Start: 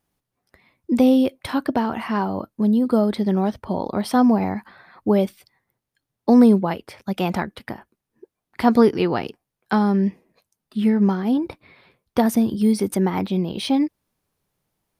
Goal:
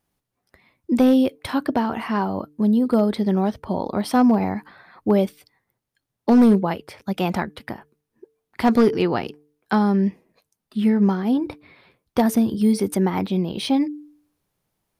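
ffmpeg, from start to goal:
ffmpeg -i in.wav -af "bandreject=frequency=148.4:width_type=h:width=4,bandreject=frequency=296.8:width_type=h:width=4,bandreject=frequency=445.2:width_type=h:width=4,volume=9.5dB,asoftclip=hard,volume=-9.5dB" out.wav

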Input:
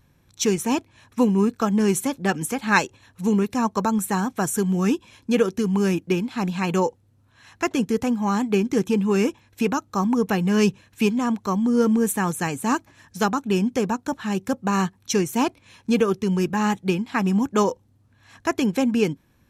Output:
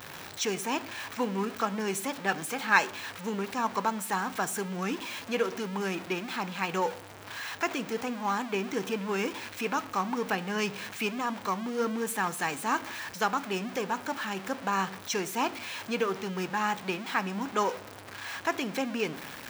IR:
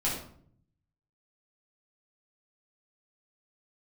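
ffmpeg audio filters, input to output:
-filter_complex "[0:a]aeval=exprs='val(0)+0.5*0.0447*sgn(val(0))':channel_layout=same,highpass=frequency=1400:poles=1,equalizer=frequency=12000:width_type=o:width=2.4:gain=-12.5,asplit=2[link_01][link_02];[1:a]atrim=start_sample=2205[link_03];[link_02][link_03]afir=irnorm=-1:irlink=0,volume=-21dB[link_04];[link_01][link_04]amix=inputs=2:normalize=0"

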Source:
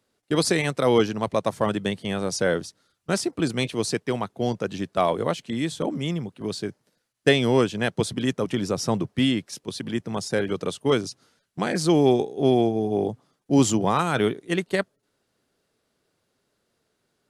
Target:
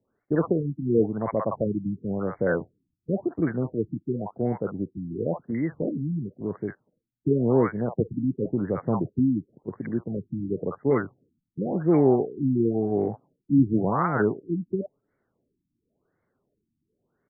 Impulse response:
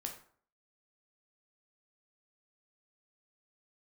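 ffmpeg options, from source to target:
-filter_complex "[0:a]acrossover=split=750[link_01][link_02];[link_02]adelay=50[link_03];[link_01][link_03]amix=inputs=2:normalize=0,afftfilt=real='re*lt(b*sr/1024,320*pow(2300/320,0.5+0.5*sin(2*PI*0.94*pts/sr)))':imag='im*lt(b*sr/1024,320*pow(2300/320,0.5+0.5*sin(2*PI*0.94*pts/sr)))':win_size=1024:overlap=0.75"

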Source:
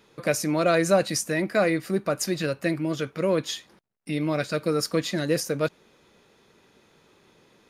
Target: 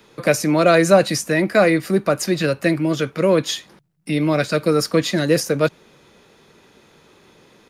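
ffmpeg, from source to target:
ffmpeg -i in.wav -filter_complex "[0:a]acrossover=split=110|430|4100[link_01][link_02][link_03][link_04];[link_01]aecho=1:1:396|792|1188|1584:0.0668|0.0374|0.021|0.0117[link_05];[link_04]alimiter=limit=-23dB:level=0:latency=1:release=279[link_06];[link_05][link_02][link_03][link_06]amix=inputs=4:normalize=0,volume=7.5dB" out.wav

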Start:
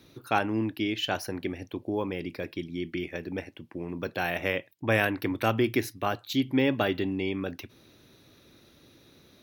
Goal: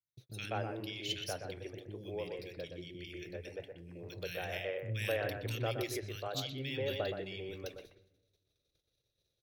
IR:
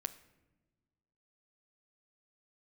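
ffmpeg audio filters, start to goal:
-filter_complex "[0:a]equalizer=frequency=125:width_type=o:width=1:gain=7,equalizer=frequency=250:width_type=o:width=1:gain=-11,equalizer=frequency=500:width_type=o:width=1:gain=8,equalizer=frequency=1000:width_type=o:width=1:gain=-10,equalizer=frequency=4000:width_type=o:width=1:gain=5,equalizer=frequency=8000:width_type=o:width=1:gain=7,acrossover=split=290|1900[link_01][link_02][link_03];[link_03]adelay=70[link_04];[link_02]adelay=200[link_05];[link_01][link_05][link_04]amix=inputs=3:normalize=0,asubboost=boost=5:cutoff=57,areverse,acompressor=mode=upward:threshold=-41dB:ratio=2.5,areverse,agate=range=-40dB:threshold=-45dB:ratio=16:detection=peak,asplit=2[link_06][link_07];[1:a]atrim=start_sample=2205,lowpass=3300,adelay=121[link_08];[link_07][link_08]afir=irnorm=-1:irlink=0,volume=-5dB[link_09];[link_06][link_09]amix=inputs=2:normalize=0,volume=-9dB"

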